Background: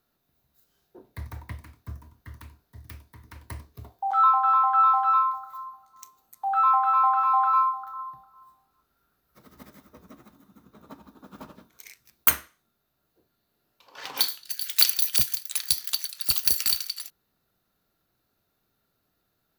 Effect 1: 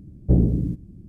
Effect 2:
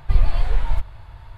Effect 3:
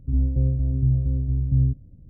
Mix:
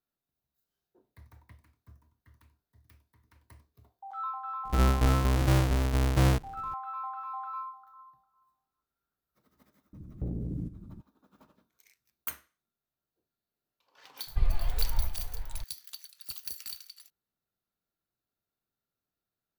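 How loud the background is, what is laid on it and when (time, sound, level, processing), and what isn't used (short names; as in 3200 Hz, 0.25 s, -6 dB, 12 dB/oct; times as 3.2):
background -17 dB
4.65 add 3 -7 dB + half-waves squared off
9.93 add 1 -3.5 dB + compressor 10:1, threshold -26 dBFS
14.27 add 2 -10 dB + echo 0.567 s -9 dB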